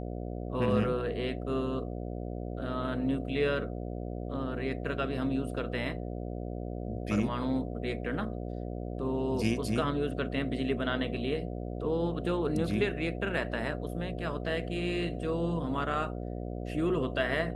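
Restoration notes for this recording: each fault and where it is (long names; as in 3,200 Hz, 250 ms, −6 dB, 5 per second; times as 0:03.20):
mains buzz 60 Hz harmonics 12 −37 dBFS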